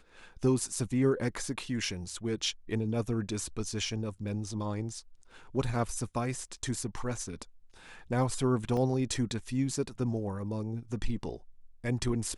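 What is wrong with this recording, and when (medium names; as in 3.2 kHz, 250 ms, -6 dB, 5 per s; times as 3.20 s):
8.77 s: dropout 2.2 ms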